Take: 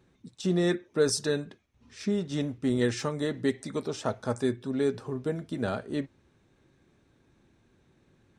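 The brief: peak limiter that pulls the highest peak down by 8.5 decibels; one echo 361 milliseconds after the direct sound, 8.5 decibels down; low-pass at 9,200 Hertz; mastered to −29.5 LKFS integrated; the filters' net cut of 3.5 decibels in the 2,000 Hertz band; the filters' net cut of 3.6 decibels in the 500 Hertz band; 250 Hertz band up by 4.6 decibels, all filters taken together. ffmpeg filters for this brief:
ffmpeg -i in.wav -af "lowpass=9200,equalizer=frequency=250:width_type=o:gain=8,equalizer=frequency=500:width_type=o:gain=-8,equalizer=frequency=2000:width_type=o:gain=-4,alimiter=limit=-20.5dB:level=0:latency=1,aecho=1:1:361:0.376,volume=1.5dB" out.wav

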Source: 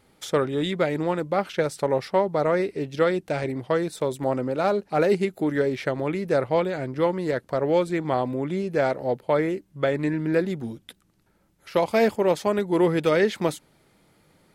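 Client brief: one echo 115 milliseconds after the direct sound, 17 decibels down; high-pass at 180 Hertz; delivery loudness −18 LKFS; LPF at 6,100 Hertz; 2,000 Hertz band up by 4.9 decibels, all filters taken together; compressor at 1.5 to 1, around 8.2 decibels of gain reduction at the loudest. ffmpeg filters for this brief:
ffmpeg -i in.wav -af "highpass=180,lowpass=6100,equalizer=frequency=2000:width_type=o:gain=6,acompressor=threshold=-39dB:ratio=1.5,aecho=1:1:115:0.141,volume=13.5dB" out.wav

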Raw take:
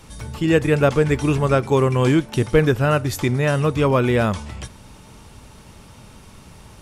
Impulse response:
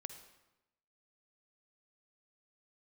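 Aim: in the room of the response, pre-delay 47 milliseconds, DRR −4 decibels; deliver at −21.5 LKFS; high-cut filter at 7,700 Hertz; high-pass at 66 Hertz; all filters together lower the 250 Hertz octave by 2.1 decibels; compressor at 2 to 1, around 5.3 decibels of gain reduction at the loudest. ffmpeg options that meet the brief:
-filter_complex "[0:a]highpass=66,lowpass=7700,equalizer=frequency=250:width_type=o:gain=-3,acompressor=threshold=-21dB:ratio=2,asplit=2[link_01][link_02];[1:a]atrim=start_sample=2205,adelay=47[link_03];[link_02][link_03]afir=irnorm=-1:irlink=0,volume=8dB[link_04];[link_01][link_04]amix=inputs=2:normalize=0,volume=-3.5dB"

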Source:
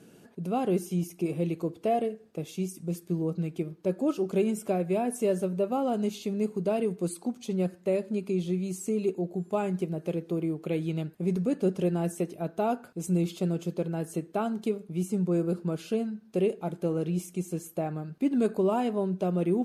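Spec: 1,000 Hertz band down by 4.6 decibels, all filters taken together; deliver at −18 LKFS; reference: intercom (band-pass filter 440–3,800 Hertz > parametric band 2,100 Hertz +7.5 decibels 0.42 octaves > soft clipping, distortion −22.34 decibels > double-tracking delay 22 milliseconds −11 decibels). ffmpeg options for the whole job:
ffmpeg -i in.wav -filter_complex "[0:a]highpass=440,lowpass=3800,equalizer=frequency=1000:width_type=o:gain=-7,equalizer=frequency=2100:width_type=o:width=0.42:gain=7.5,asoftclip=threshold=-23dB,asplit=2[link_01][link_02];[link_02]adelay=22,volume=-11dB[link_03];[link_01][link_03]amix=inputs=2:normalize=0,volume=19dB" out.wav

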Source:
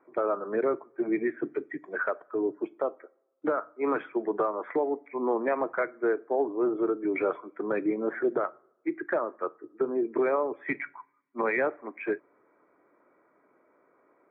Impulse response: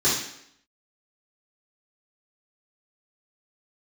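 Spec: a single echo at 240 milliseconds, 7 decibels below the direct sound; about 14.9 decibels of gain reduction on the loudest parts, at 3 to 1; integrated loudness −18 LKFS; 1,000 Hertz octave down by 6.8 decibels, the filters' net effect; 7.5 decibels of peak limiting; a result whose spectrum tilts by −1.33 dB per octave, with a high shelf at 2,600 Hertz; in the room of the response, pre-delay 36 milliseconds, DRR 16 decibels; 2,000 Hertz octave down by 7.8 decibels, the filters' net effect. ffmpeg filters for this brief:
-filter_complex "[0:a]equalizer=frequency=1000:width_type=o:gain=-6.5,equalizer=frequency=2000:width_type=o:gain=-4.5,highshelf=frequency=2600:gain=-7.5,acompressor=threshold=-45dB:ratio=3,alimiter=level_in=13.5dB:limit=-24dB:level=0:latency=1,volume=-13.5dB,aecho=1:1:240:0.447,asplit=2[link_01][link_02];[1:a]atrim=start_sample=2205,adelay=36[link_03];[link_02][link_03]afir=irnorm=-1:irlink=0,volume=-31dB[link_04];[link_01][link_04]amix=inputs=2:normalize=0,volume=29dB"

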